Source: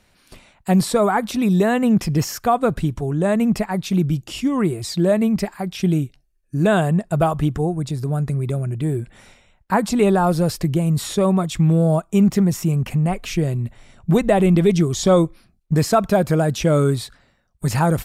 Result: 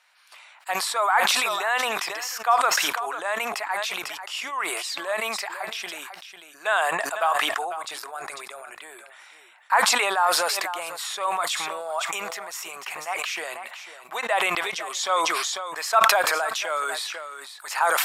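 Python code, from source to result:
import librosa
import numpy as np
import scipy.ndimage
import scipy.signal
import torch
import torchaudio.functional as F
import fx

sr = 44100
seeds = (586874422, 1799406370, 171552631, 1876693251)

p1 = scipy.signal.sosfilt(scipy.signal.butter(4, 900.0, 'highpass', fs=sr, output='sos'), x)
p2 = fx.high_shelf(p1, sr, hz=4000.0, db=-8.5)
p3 = p2 + fx.echo_single(p2, sr, ms=497, db=-15.0, dry=0)
p4 = fx.sustainer(p3, sr, db_per_s=23.0)
y = p4 * 10.0 ** (3.0 / 20.0)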